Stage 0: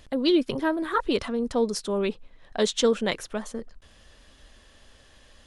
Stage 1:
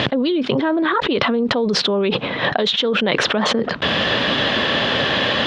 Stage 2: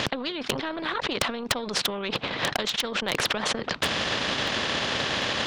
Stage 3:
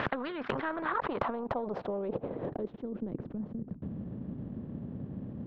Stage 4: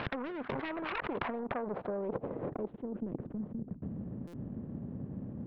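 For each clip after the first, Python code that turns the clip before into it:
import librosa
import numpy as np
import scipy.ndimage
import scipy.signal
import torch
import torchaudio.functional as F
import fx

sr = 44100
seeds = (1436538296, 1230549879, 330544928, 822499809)

y1 = scipy.signal.sosfilt(scipy.signal.ellip(3, 1.0, 80, [130.0, 3600.0], 'bandpass', fs=sr, output='sos'), x)
y1 = fx.env_flatten(y1, sr, amount_pct=100)
y2 = fx.transient(y1, sr, attack_db=8, sustain_db=-8)
y2 = np.clip(10.0 ** (5.5 / 20.0) * y2, -1.0, 1.0) / 10.0 ** (5.5 / 20.0)
y2 = fx.spectral_comp(y2, sr, ratio=2.0)
y3 = fx.filter_sweep_lowpass(y2, sr, from_hz=1500.0, to_hz=200.0, start_s=0.67, end_s=3.55, q=1.7)
y3 = y3 * librosa.db_to_amplitude(-4.5)
y4 = fx.self_delay(y3, sr, depth_ms=0.61)
y4 = scipy.ndimage.gaussian_filter1d(y4, 3.0, mode='constant')
y4 = fx.buffer_glitch(y4, sr, at_s=(4.27,), block=256, repeats=10)
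y4 = y4 * librosa.db_to_amplitude(-1.0)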